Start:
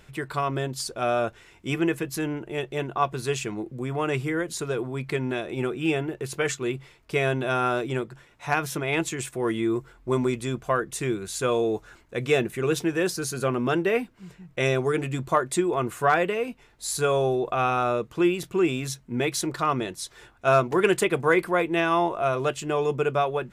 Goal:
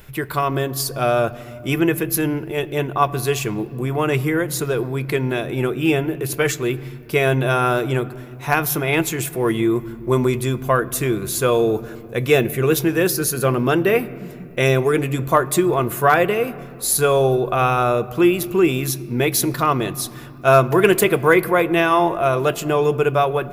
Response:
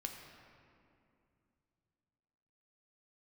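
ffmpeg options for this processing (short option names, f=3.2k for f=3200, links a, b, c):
-filter_complex "[0:a]asplit=2[a][b];[1:a]atrim=start_sample=2205,lowshelf=f=260:g=12[c];[b][c]afir=irnorm=-1:irlink=0,volume=-10dB[d];[a][d]amix=inputs=2:normalize=0,aexciter=amount=7.7:drive=3:freq=11k,volume=4.5dB"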